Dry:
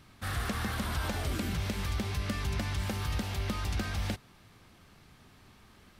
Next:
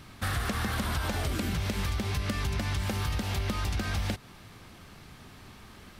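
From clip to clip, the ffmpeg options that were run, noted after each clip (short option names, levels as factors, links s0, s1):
-af "acompressor=threshold=0.0178:ratio=6,volume=2.51"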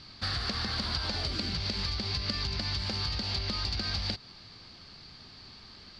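-af "lowpass=f=4600:t=q:w=12,volume=0.562"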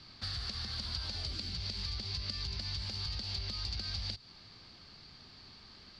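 -filter_complex "[0:a]acrossover=split=130|3000[s0][s1][s2];[s1]acompressor=threshold=0.00501:ratio=4[s3];[s0][s3][s2]amix=inputs=3:normalize=0,volume=0.596"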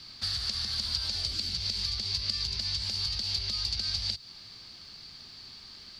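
-af "crystalizer=i=3.5:c=0"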